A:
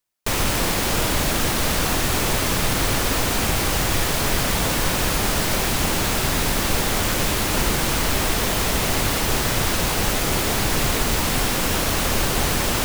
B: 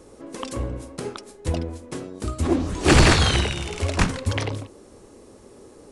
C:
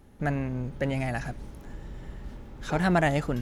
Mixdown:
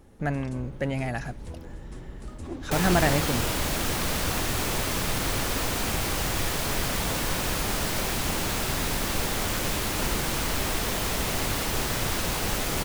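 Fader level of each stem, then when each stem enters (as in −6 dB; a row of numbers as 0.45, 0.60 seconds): −6.5, −16.0, 0.0 decibels; 2.45, 0.00, 0.00 seconds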